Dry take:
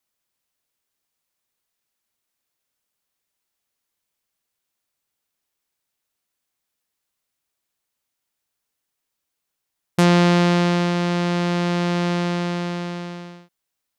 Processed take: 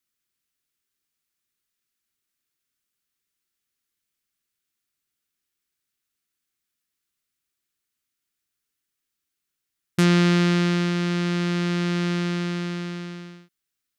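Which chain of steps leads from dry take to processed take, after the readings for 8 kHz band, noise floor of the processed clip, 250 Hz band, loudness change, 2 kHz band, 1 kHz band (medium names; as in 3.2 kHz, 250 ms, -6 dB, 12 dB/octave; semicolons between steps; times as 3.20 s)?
-2.0 dB, -82 dBFS, -2.0 dB, -2.5 dB, -2.0 dB, -8.0 dB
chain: high-order bell 710 Hz -10 dB 1.3 oct; trim -2 dB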